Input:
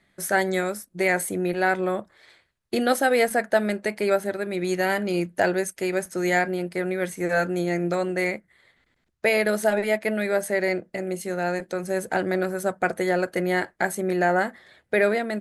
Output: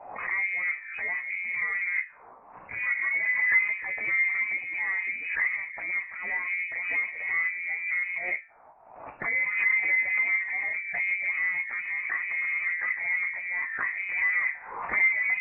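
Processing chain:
spectral magnitudes quantised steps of 15 dB
hum removal 53.3 Hz, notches 18
in parallel at +3 dB: compressor whose output falls as the input rises −30 dBFS, ratio −0.5
on the sum: pitch-shifted copies added +4 semitones −16 dB, +7 semitones −12 dB
harmonic generator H 5 −20 dB, 6 −23 dB, 8 −25 dB, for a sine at −6.5 dBFS
envelope filter 620–1,900 Hz, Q 3.7, down, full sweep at −14 dBFS
flanger 0.17 Hz, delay 8.9 ms, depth 8.3 ms, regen −30%
voice inversion scrambler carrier 2,700 Hz
background raised ahead of every attack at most 60 dB per second

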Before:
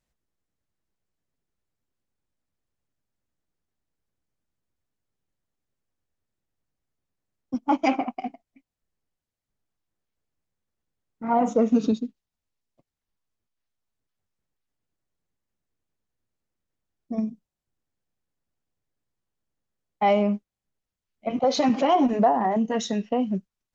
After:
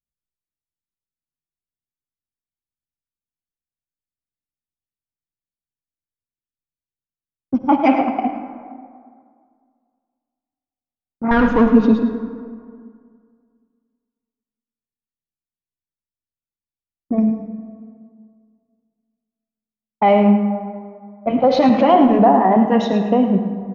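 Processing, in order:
0:11.31–0:11.71: lower of the sound and its delayed copy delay 0.62 ms
low-pass that shuts in the quiet parts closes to 390 Hz, open at −23 dBFS
noise gate −50 dBFS, range −26 dB
in parallel at 0 dB: brickwall limiter −20.5 dBFS, peak gain reduction 11.5 dB
on the sum: high-frequency loss of the air 300 metres
single-tap delay 106 ms −11 dB
on a send at −7.5 dB: convolution reverb RT60 2.1 s, pre-delay 48 ms
on the sum: level +5 dB

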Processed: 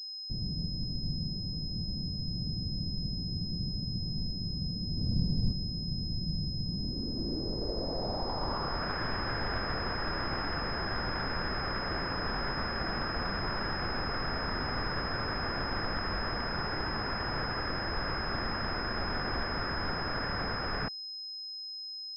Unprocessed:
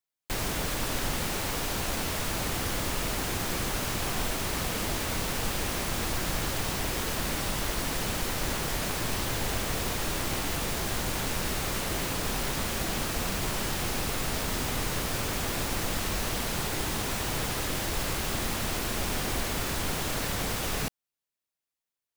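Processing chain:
0:04.97–0:05.53: each half-wave held at its own peak
low-pass filter sweep 170 Hz → 1,600 Hz, 0:06.61–0:08.95
switching amplifier with a slow clock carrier 5,100 Hz
level −3.5 dB

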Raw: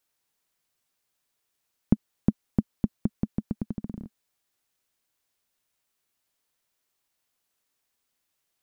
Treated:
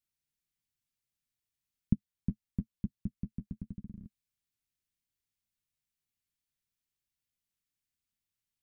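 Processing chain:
0:01.93–0:04.05: flanger 1 Hz, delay 9.9 ms, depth 2.2 ms, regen −28%
drawn EQ curve 110 Hz 0 dB, 200 Hz −4 dB, 660 Hz −23 dB, 2,200 Hz −10 dB
level −2 dB

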